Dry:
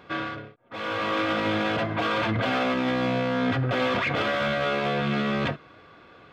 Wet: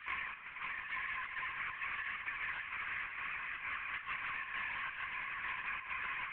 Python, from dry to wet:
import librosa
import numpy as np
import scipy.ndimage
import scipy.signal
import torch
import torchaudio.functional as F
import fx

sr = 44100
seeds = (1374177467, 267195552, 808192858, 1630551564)

y = fx.reverse_delay_fb(x, sr, ms=505, feedback_pct=60, wet_db=-6.5)
y = fx.spec_gate(y, sr, threshold_db=-25, keep='weak')
y = scipy.signal.sosfilt(scipy.signal.ellip(3, 1.0, 40, [1000.0, 2400.0], 'bandpass', fs=sr, output='sos'), y)
y = fx.over_compress(y, sr, threshold_db=-54.0, ratio=-1.0)
y = fx.chopper(y, sr, hz=2.2, depth_pct=60, duty_pct=75)
y = fx.echo_swing(y, sr, ms=869, ratio=1.5, feedback_pct=42, wet_db=-9.0)
y = fx.lpc_vocoder(y, sr, seeds[0], excitation='whisper', order=10)
y = fx.band_squash(y, sr, depth_pct=100)
y = y * librosa.db_to_amplitude(11.0)